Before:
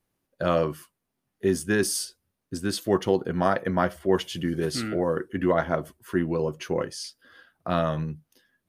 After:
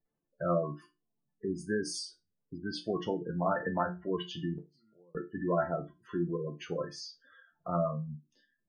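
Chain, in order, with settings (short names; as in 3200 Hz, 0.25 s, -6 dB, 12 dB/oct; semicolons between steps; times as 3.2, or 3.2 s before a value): LPF 6800 Hz 12 dB/oct; notches 60/120/180/240/300/360 Hz; spectral gate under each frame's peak -15 dB strong; 4.58–5.15 flipped gate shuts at -27 dBFS, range -32 dB; resonator bank D3 minor, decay 0.22 s; 3.6–4.04 three-band squash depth 40%; gain +7.5 dB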